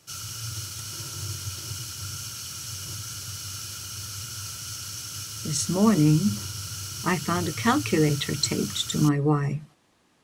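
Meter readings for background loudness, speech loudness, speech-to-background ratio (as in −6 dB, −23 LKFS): −33.5 LKFS, −24.5 LKFS, 9.0 dB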